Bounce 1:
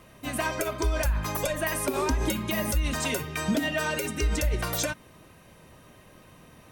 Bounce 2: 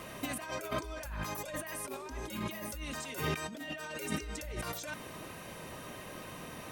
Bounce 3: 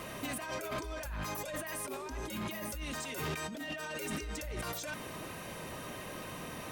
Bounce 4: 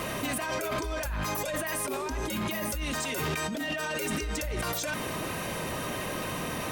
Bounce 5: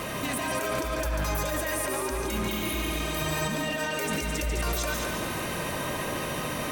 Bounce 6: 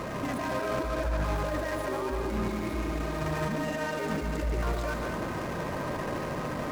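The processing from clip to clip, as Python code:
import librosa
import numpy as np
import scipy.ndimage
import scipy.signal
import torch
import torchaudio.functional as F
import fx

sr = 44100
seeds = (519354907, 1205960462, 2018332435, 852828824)

y1 = fx.low_shelf(x, sr, hz=150.0, db=-9.5)
y1 = fx.over_compress(y1, sr, threshold_db=-40.0, ratio=-1.0)
y2 = 10.0 ** (-36.0 / 20.0) * np.tanh(y1 / 10.0 ** (-36.0 / 20.0))
y2 = F.gain(torch.from_numpy(y2), 3.0).numpy()
y3 = fx.env_flatten(y2, sr, amount_pct=50)
y3 = F.gain(torch.from_numpy(y3), 5.5).numpy()
y4 = fx.spec_repair(y3, sr, seeds[0], start_s=2.55, length_s=0.83, low_hz=210.0, high_hz=9400.0, source='both')
y4 = fx.echo_heads(y4, sr, ms=71, heads='second and third', feedback_pct=53, wet_db=-6.0)
y5 = scipy.signal.medfilt(y4, 15)
y5 = fx.doppler_dist(y5, sr, depth_ms=0.14)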